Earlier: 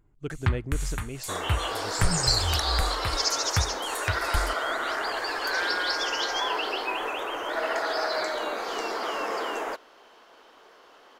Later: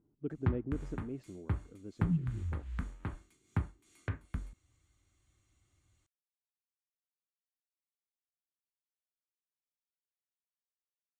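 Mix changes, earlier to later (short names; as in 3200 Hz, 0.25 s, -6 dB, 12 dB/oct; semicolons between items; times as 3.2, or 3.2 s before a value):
first sound +5.0 dB; second sound: muted; master: add band-pass 270 Hz, Q 1.5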